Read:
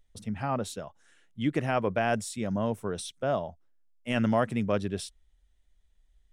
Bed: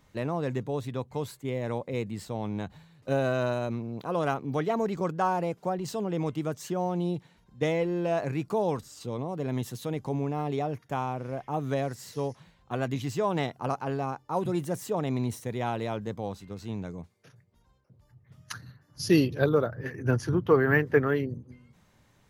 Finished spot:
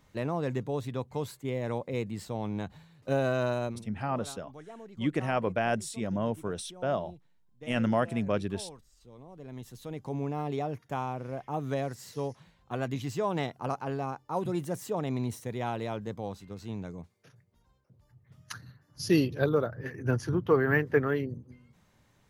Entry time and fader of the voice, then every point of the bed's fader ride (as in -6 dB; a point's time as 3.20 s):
3.60 s, -1.5 dB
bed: 3.67 s -1 dB
3.87 s -19 dB
9.06 s -19 dB
10.25 s -2.5 dB